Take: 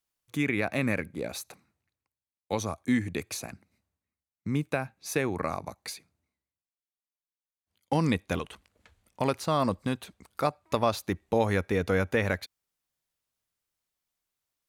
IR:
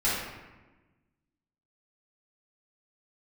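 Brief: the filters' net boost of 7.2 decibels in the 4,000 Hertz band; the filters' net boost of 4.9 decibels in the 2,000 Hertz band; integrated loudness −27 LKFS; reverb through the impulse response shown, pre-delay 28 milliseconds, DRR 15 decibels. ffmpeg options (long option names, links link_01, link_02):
-filter_complex "[0:a]equalizer=frequency=2000:width_type=o:gain=4,equalizer=frequency=4000:width_type=o:gain=7.5,asplit=2[link_01][link_02];[1:a]atrim=start_sample=2205,adelay=28[link_03];[link_02][link_03]afir=irnorm=-1:irlink=0,volume=-27dB[link_04];[link_01][link_04]amix=inputs=2:normalize=0,volume=1.5dB"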